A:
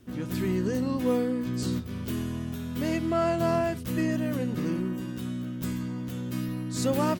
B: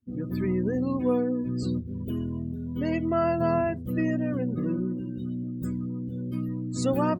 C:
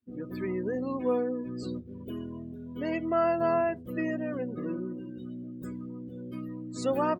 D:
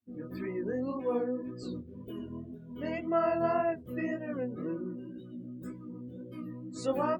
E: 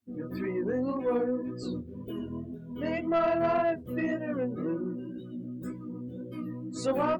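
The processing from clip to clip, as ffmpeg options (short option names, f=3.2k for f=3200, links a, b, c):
-af "afftdn=nr=32:nf=-37,volume=1dB"
-af "bass=f=250:g=-13,treble=f=4k:g=-7"
-af "flanger=delay=18:depth=6.1:speed=1.9"
-af "asoftclip=type=tanh:threshold=-24dB,volume=4.5dB"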